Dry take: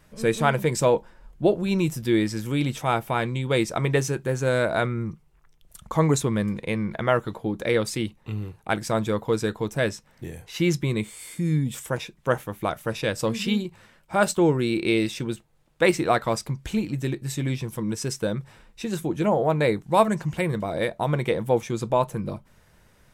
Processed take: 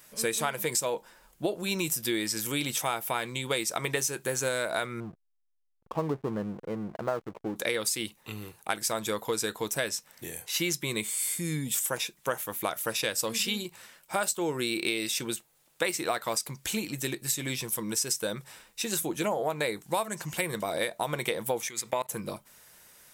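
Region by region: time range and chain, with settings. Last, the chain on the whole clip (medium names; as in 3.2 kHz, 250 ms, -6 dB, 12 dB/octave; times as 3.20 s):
5.00–7.56 s: Gaussian low-pass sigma 7.1 samples + hysteresis with a dead band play -35.5 dBFS + tape noise reduction on one side only decoder only
21.68–22.09 s: peaking EQ 2 kHz +15 dB 0.32 oct + level held to a coarse grid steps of 21 dB + tape noise reduction on one side only encoder only
whole clip: RIAA curve recording; compression 10:1, threshold -25 dBFS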